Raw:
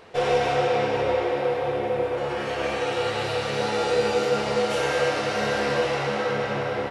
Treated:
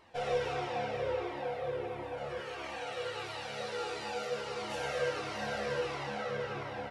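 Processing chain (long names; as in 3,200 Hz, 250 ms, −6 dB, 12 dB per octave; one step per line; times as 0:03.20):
0:02.40–0:04.62: low-shelf EQ 360 Hz −7.5 dB
flanger whose copies keep moving one way falling 1.5 Hz
level −7 dB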